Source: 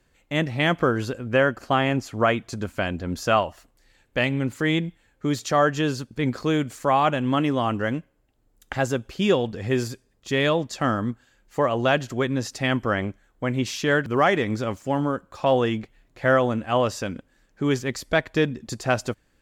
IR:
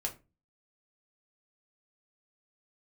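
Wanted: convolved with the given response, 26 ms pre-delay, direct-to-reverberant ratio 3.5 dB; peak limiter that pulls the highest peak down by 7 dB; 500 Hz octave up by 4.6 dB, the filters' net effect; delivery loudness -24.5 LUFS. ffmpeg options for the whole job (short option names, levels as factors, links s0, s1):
-filter_complex "[0:a]equalizer=f=500:t=o:g=5.5,alimiter=limit=0.251:level=0:latency=1,asplit=2[s0][s1];[1:a]atrim=start_sample=2205,adelay=26[s2];[s1][s2]afir=irnorm=-1:irlink=0,volume=0.562[s3];[s0][s3]amix=inputs=2:normalize=0,volume=0.794"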